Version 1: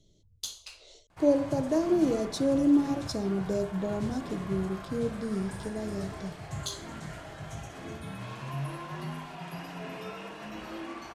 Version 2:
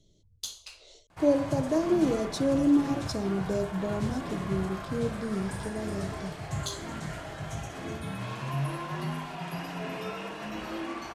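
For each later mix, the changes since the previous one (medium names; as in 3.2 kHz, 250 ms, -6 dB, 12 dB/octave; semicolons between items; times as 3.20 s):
background +4.0 dB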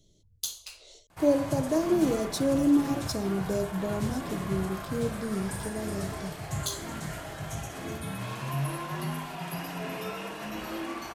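master: remove distance through air 50 m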